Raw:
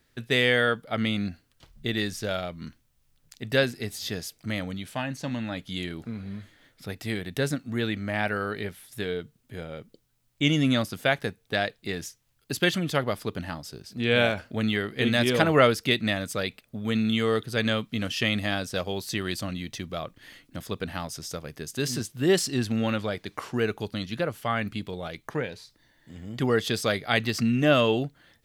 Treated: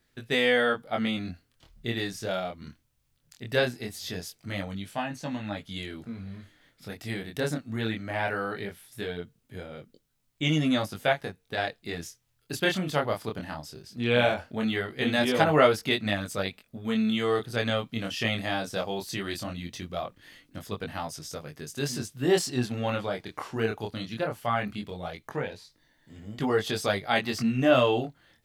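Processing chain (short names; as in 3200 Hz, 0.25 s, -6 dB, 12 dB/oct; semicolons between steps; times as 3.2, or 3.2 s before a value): chorus 0.19 Hz, delay 19.5 ms, depth 7.3 ms; 11.12–11.58 compressor 2:1, threshold -33 dBFS, peak gain reduction 5 dB; dynamic EQ 810 Hz, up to +7 dB, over -46 dBFS, Q 1.8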